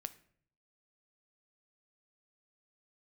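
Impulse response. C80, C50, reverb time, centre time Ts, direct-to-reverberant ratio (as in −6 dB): 20.0 dB, 17.0 dB, 0.60 s, 3 ms, 11.5 dB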